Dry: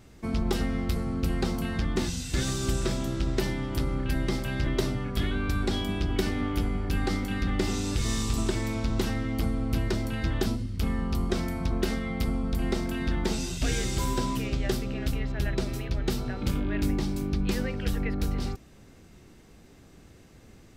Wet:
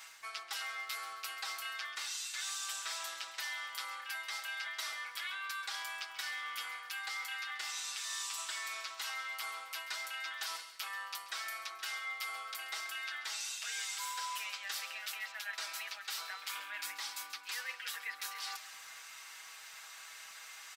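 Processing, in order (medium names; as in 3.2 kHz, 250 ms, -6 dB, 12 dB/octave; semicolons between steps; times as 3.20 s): high-pass 1.1 kHz 24 dB/octave; comb 6.2 ms, depth 74%; reverse; compression 4:1, threshold -52 dBFS, peak gain reduction 18.5 dB; reverse; crackle 33 per s -59 dBFS; feedback delay 135 ms, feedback 45%, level -14.5 dB; trim +10.5 dB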